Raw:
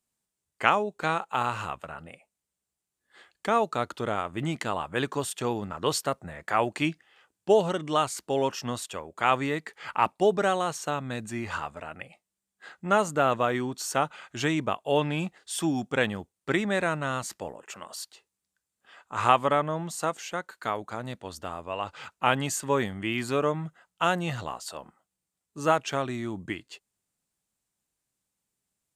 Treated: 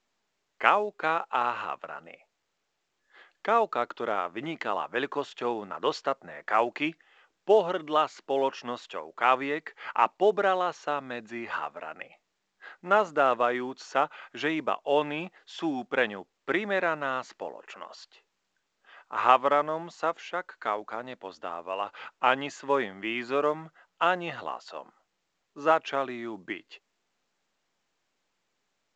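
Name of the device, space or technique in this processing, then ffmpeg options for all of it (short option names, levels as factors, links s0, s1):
telephone: -af "highpass=340,lowpass=3000,volume=1.12" -ar 16000 -c:a pcm_mulaw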